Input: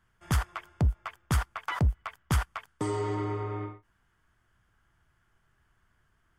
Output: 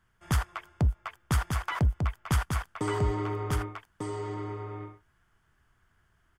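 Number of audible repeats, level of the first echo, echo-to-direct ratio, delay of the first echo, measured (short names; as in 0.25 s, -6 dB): 1, -4.5 dB, -4.5 dB, 1.196 s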